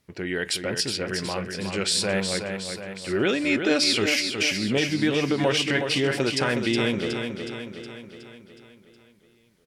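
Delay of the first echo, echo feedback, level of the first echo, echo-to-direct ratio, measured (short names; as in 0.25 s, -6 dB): 0.367 s, 55%, -6.5 dB, -5.0 dB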